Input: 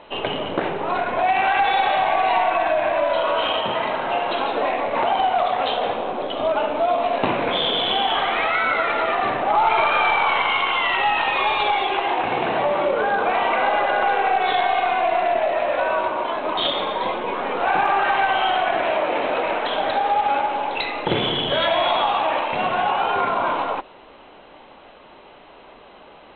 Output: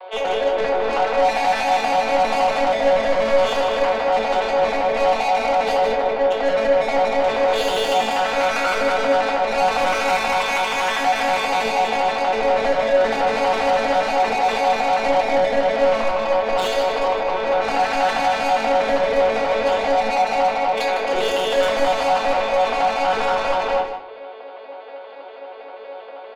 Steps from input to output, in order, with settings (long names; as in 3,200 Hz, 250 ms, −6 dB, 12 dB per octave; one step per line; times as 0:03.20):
vocoder with an arpeggio as carrier minor triad, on F#3, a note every 80 ms
Butterworth high-pass 420 Hz 36 dB per octave
in parallel at 0 dB: brickwall limiter −15.5 dBFS, peak gain reduction 6.5 dB
on the sum: soft clipping −22.5 dBFS, distortion −7 dB
on a send: single-tap delay 154 ms −9.5 dB
on the sum: rectangular room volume 280 cubic metres, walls furnished, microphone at 1.9 metres
level +1.5 dB